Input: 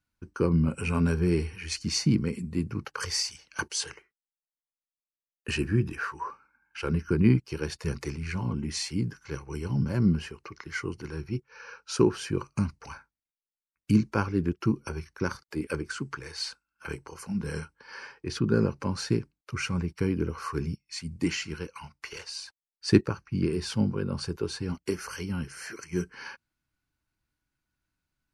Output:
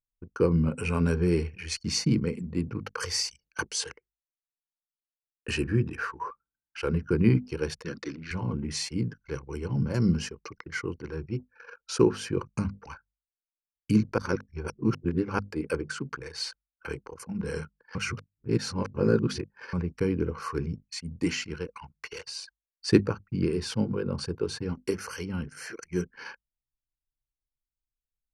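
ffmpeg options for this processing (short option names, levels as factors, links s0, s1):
-filter_complex "[0:a]asettb=1/sr,asplit=3[s0][s1][s2];[s0]atrim=end=7.834[s3];[s1]atrim=start=7.83:end=8.31,asetpts=PTS-STARTPTS,afade=t=in:d=0.004:c=qsin,afade=t=out:st=0.476:d=0.004:c=qsin,highpass=220,equalizer=f=280:t=q:w=4:g=8,equalizer=f=420:t=q:w=4:g=-9,equalizer=f=840:t=q:w=4:g=-10,equalizer=f=1600:t=q:w=4:g=4,equalizer=f=2400:t=q:w=4:g=-4,equalizer=f=3600:t=q:w=4:g=7,lowpass=f=5800:w=0.5412,lowpass=f=5800:w=1.3066[s4];[s2]atrim=start=8.306[s5];[s3][s4]acrossfade=d=0.004:c1=hsin:c2=qsin[s6];[s6][s5]acrossfade=d=0.004:c1=qsin:c2=hsin,asettb=1/sr,asplit=3[s7][s8][s9];[s7]atrim=end=9.944[s10];[s8]atrim=start=9.94:end=10.55,asetpts=PTS-STARTPTS,afade=t=in:d=0.004:c=qsin,afade=t=out:st=0.606:d=0.004:c=qsin,equalizer=f=6200:w=1.1:g=12[s11];[s9]atrim=start=10.546[s12];[s10][s11]acrossfade=d=0.004:c1=hsin:c2=qsin[s13];[s13][s12]acrossfade=d=0.004:c1=qsin:c2=hsin,asplit=5[s14][s15][s16][s17][s18];[s14]atrim=end=14.182[s19];[s15]atrim=start=14.178:end=15.392,asetpts=PTS-STARTPTS,areverse[s20];[s16]atrim=start=15.388:end=17.952[s21];[s17]atrim=start=17.948:end=19.732,asetpts=PTS-STARTPTS,areverse[s22];[s18]atrim=start=19.728[s23];[s19][s20]acrossfade=d=0.004:c1=hsin:c2=hsin[s24];[s24][s21]acrossfade=d=0.004:c1=hsin:c2=hsin[s25];[s25][s22]acrossfade=d=0.004:c1=hsin:c2=hsin[s26];[s26][s23]acrossfade=d=0.004:c1=hsin:c2=hsin,bandreject=f=50:t=h:w=6,bandreject=f=100:t=h:w=6,bandreject=f=150:t=h:w=6,bandreject=f=200:t=h:w=6,bandreject=f=250:t=h:w=6,anlmdn=0.1,equalizer=f=480:t=o:w=0.25:g=7"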